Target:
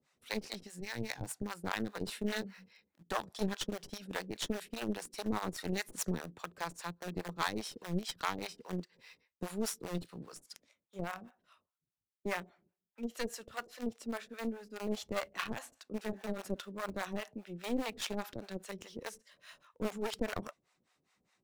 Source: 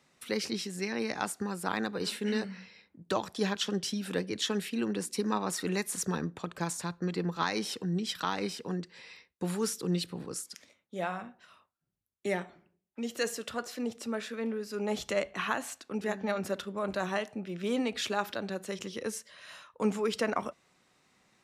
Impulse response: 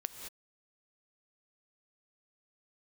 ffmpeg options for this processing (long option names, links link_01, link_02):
-filter_complex "[0:a]aeval=exprs='0.168*(cos(1*acos(clip(val(0)/0.168,-1,1)))-cos(1*PI/2))+0.0473*(cos(4*acos(clip(val(0)/0.168,-1,1)))-cos(4*PI/2))':channel_layout=same,asplit=2[link_01][link_02];[link_02]acrusher=bits=5:dc=4:mix=0:aa=0.000001,volume=-9dB[link_03];[link_01][link_03]amix=inputs=2:normalize=0,acrossover=split=550[link_04][link_05];[link_04]aeval=exprs='val(0)*(1-1/2+1/2*cos(2*PI*4.9*n/s))':channel_layout=same[link_06];[link_05]aeval=exprs='val(0)*(1-1/2-1/2*cos(2*PI*4.9*n/s))':channel_layout=same[link_07];[link_06][link_07]amix=inputs=2:normalize=0,asettb=1/sr,asplit=3[link_08][link_09][link_10];[link_08]atrim=end=0.804[link_11];[link_09]atrim=start=0.8:end=1.43,asetpts=PTS-STARTPTS,afade=type=in:duration=0.004:curve=qsin,afade=type=out:start_time=0.626:duration=0.004:curve=qsin,equalizer=frequency=125:width_type=o:width=0.33:gain=10,equalizer=frequency=200:width_type=o:width=0.33:gain=-9,equalizer=frequency=400:width_type=o:width=0.33:gain=-7,equalizer=frequency=630:width_type=o:width=0.33:gain=-4,equalizer=frequency=1250:width_type=o:width=0.33:gain=-7[link_12];[link_10]atrim=start=1.426[link_13];[link_11][link_12]acrossfade=duration=0.004:curve1=hsin:curve2=qsin[link_14];[link_14][link_13]acrossfade=duration=0.004:curve1=qsin:curve2=hsin,volume=-5dB"